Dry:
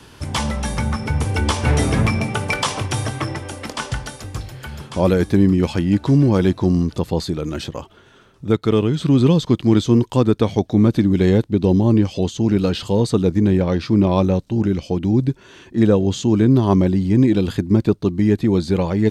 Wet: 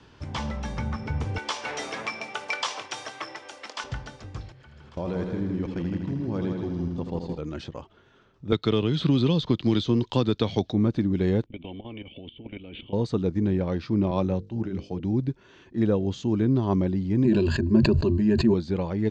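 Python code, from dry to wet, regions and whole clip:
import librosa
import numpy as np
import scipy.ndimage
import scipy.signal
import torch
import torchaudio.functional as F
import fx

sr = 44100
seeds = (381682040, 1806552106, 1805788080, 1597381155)

y = fx.chain(x, sr, fx.highpass(hz=540.0, slope=12),
    fx.high_shelf(hz=2800.0, db=8.0), at=(1.38, 3.84))
y = fx.chain(y, sr, fx.level_steps(step_db=21),
    fx.echo_heads(ms=81, heads='first and second', feedback_pct=55, wet_db=-7.5), at=(4.52, 7.38))
y = fx.chain(y, sr, fx.peak_eq(hz=3800.0, db=11.0, octaves=1.1),
    fx.band_squash(depth_pct=100), at=(8.52, 10.72))
y = fx.chain(y, sr, fx.level_steps(step_db=15),
    fx.formant_cascade(vowel='i'),
    fx.spectral_comp(ratio=4.0), at=(11.46, 12.93))
y = fx.chain(y, sr, fx.hum_notches(base_hz=50, count=10),
    fx.band_widen(depth_pct=40), at=(14.11, 15.0))
y = fx.chain(y, sr, fx.ripple_eq(per_octave=1.4, db=15),
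    fx.sustainer(db_per_s=24.0), at=(17.24, 18.54))
y = scipy.signal.sosfilt(scipy.signal.butter(4, 6600.0, 'lowpass', fs=sr, output='sos'), y)
y = fx.high_shelf(y, sr, hz=3900.0, db=-6.5)
y = y * librosa.db_to_amplitude(-8.5)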